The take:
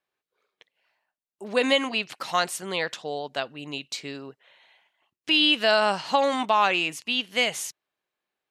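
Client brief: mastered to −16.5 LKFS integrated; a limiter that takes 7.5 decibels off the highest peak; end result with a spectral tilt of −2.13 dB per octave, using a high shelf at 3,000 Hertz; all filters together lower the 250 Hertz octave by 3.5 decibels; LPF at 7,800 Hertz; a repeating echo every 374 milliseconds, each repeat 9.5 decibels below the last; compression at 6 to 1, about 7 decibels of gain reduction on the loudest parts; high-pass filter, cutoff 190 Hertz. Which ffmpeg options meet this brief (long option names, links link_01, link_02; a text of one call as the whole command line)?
ffmpeg -i in.wav -af "highpass=190,lowpass=7800,equalizer=frequency=250:width_type=o:gain=-3,highshelf=frequency=3000:gain=-5,acompressor=threshold=-25dB:ratio=6,alimiter=limit=-21dB:level=0:latency=1,aecho=1:1:374|748|1122|1496:0.335|0.111|0.0365|0.012,volume=16dB" out.wav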